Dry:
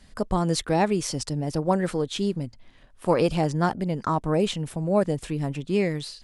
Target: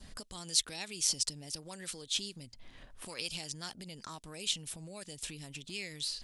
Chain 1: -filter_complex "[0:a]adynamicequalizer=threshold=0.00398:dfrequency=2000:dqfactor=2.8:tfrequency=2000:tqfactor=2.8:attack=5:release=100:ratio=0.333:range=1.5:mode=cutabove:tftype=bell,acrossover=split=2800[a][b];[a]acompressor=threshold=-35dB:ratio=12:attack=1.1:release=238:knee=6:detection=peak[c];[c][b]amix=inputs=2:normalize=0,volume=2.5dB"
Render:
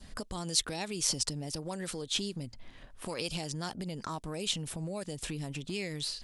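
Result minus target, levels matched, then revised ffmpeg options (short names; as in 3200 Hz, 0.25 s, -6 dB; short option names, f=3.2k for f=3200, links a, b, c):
compressor: peak gain reduction -10 dB
-filter_complex "[0:a]adynamicequalizer=threshold=0.00398:dfrequency=2000:dqfactor=2.8:tfrequency=2000:tqfactor=2.8:attack=5:release=100:ratio=0.333:range=1.5:mode=cutabove:tftype=bell,acrossover=split=2800[a][b];[a]acompressor=threshold=-46dB:ratio=12:attack=1.1:release=238:knee=6:detection=peak[c];[c][b]amix=inputs=2:normalize=0,volume=2.5dB"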